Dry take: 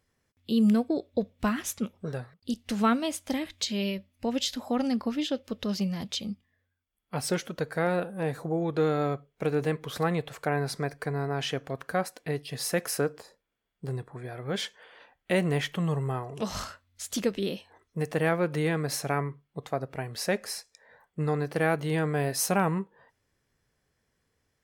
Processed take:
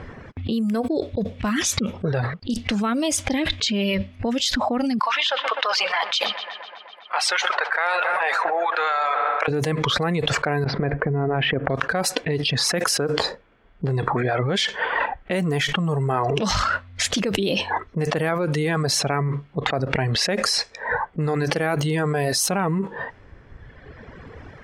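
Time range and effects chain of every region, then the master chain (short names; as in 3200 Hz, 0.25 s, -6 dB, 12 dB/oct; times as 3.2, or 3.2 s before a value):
4.99–9.48 HPF 850 Hz 24 dB/oct + dark delay 0.126 s, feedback 70%, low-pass 3000 Hz, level -12 dB
10.64–11.7 dynamic EQ 1100 Hz, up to -5 dB, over -43 dBFS, Q 1 + compressor, threshold -38 dBFS + Bessel low-pass 1800 Hz, order 4
whole clip: low-pass opened by the level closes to 1800 Hz, open at -22.5 dBFS; reverb removal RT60 1.2 s; fast leveller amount 100%; gain -1 dB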